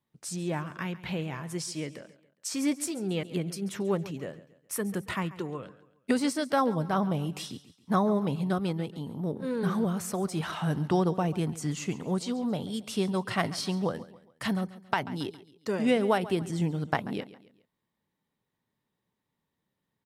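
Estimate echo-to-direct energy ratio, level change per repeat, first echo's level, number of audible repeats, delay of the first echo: -16.0 dB, -7.5 dB, -17.0 dB, 3, 0.138 s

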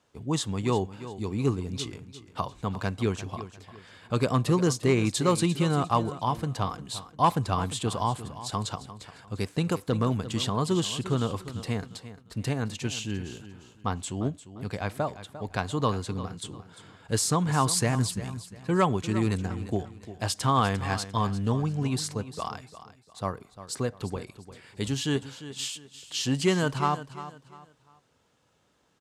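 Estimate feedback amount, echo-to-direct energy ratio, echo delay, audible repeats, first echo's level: 31%, -13.5 dB, 0.349 s, 3, -14.0 dB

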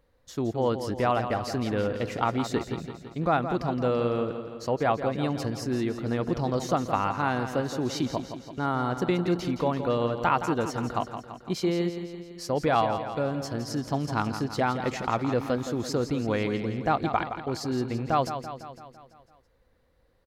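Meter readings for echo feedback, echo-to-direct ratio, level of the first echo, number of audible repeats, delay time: 59%, -7.5 dB, -9.5 dB, 6, 0.168 s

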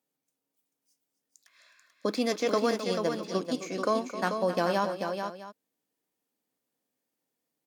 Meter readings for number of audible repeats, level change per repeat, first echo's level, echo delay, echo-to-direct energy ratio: 3, no steady repeat, -12.0 dB, 0.262 s, -5.0 dB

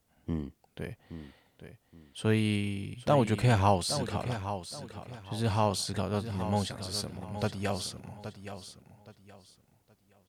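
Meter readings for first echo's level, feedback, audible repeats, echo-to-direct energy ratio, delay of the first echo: -10.5 dB, 28%, 3, -10.0 dB, 0.821 s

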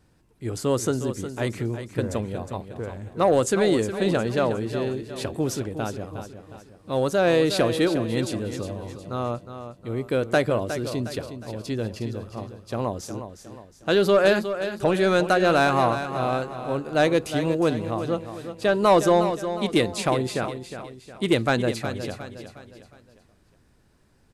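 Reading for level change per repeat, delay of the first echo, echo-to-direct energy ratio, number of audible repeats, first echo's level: -7.5 dB, 0.361 s, -9.0 dB, 4, -10.0 dB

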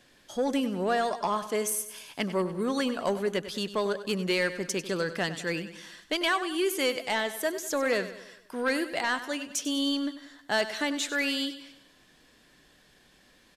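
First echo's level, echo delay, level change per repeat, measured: -13.0 dB, 97 ms, -6.0 dB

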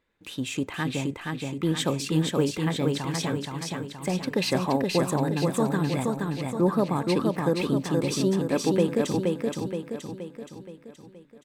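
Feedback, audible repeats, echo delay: 51%, 6, 0.473 s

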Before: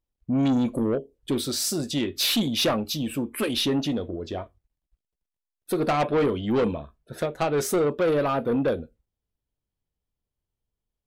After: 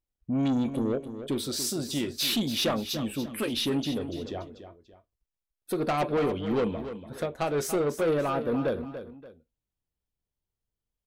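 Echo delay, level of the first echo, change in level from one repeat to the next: 0.288 s, -11.0 dB, -9.0 dB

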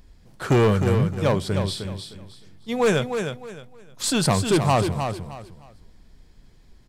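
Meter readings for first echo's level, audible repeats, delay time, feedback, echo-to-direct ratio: -7.0 dB, 3, 0.308 s, 26%, -6.5 dB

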